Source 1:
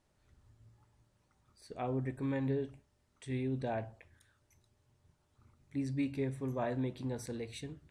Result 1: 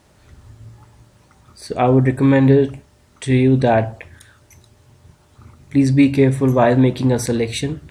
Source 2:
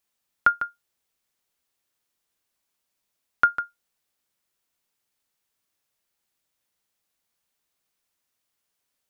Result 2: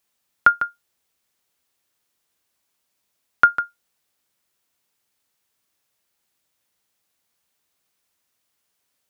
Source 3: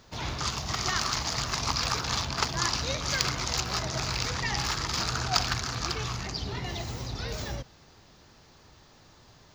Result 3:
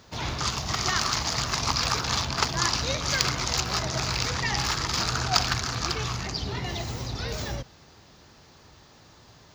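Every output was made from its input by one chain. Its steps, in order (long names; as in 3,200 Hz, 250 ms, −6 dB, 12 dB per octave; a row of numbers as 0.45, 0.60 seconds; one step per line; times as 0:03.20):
high-pass filter 42 Hz
normalise the peak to −1.5 dBFS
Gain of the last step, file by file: +22.0, +5.0, +3.0 decibels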